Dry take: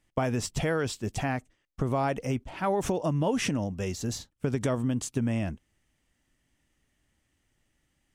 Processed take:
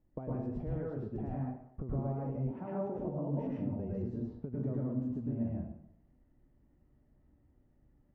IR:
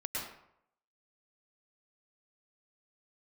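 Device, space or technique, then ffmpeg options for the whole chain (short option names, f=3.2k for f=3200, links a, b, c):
television next door: -filter_complex "[0:a]acompressor=threshold=-41dB:ratio=5,lowpass=580[a];[1:a]atrim=start_sample=2205[b];[a][b]afir=irnorm=-1:irlink=0,asettb=1/sr,asplit=3[c][d][e];[c]atrim=end=2.514[f];[d]atrim=start=2.51:end=2.99,asetpts=PTS-STARTPTS,afade=t=in:d=0.004:c=qsin,afade=t=out:st=0.476:d=0.004:c=qsin,highpass=f=120:w=0.5412,highpass=f=120:w=1.3066[g];[e]atrim=start=2.986[h];[f][g]acrossfade=d=0.004:c1=hsin:c2=qsin[i];[i][h]acrossfade=d=0.004:c1=qsin:c2=hsin,volume=4.5dB"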